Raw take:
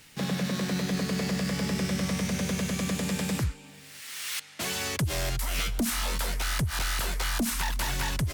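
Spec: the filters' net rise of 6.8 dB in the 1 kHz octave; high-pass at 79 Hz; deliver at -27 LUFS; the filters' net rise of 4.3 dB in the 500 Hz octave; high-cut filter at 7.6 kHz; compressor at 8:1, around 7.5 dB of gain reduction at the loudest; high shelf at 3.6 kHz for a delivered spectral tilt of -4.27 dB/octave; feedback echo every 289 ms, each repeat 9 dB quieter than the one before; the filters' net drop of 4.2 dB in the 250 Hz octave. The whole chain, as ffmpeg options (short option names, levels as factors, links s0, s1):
-af "highpass=79,lowpass=7600,equalizer=f=250:t=o:g=-7.5,equalizer=f=500:t=o:g=5,equalizer=f=1000:t=o:g=8,highshelf=f=3600:g=-6,acompressor=threshold=0.0224:ratio=8,aecho=1:1:289|578|867|1156:0.355|0.124|0.0435|0.0152,volume=2.99"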